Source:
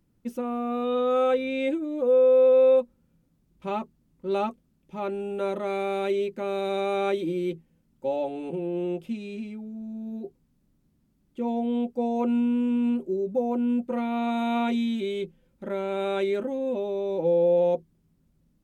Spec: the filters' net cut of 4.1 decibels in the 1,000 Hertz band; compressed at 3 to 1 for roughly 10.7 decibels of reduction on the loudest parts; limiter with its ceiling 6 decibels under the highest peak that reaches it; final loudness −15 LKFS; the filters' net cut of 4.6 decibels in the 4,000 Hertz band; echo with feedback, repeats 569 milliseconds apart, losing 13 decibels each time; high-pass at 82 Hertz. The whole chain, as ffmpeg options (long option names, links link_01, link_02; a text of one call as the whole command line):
ffmpeg -i in.wav -af "highpass=82,equalizer=frequency=1000:width_type=o:gain=-6,equalizer=frequency=4000:width_type=o:gain=-5,acompressor=threshold=-32dB:ratio=3,alimiter=level_in=5dB:limit=-24dB:level=0:latency=1,volume=-5dB,aecho=1:1:569|1138|1707:0.224|0.0493|0.0108,volume=21.5dB" out.wav